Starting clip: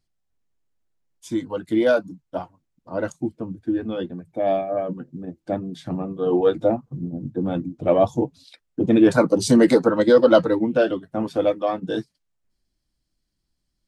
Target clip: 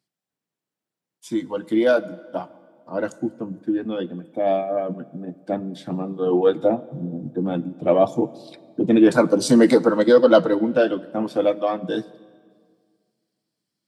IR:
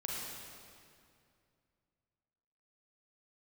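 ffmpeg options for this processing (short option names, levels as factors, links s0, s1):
-filter_complex "[0:a]highpass=f=140:w=0.5412,highpass=f=140:w=1.3066,bandreject=f=6500:w=17,asplit=2[s0][s1];[1:a]atrim=start_sample=2205,asetrate=57330,aresample=44100[s2];[s1][s2]afir=irnorm=-1:irlink=0,volume=0.141[s3];[s0][s3]amix=inputs=2:normalize=0"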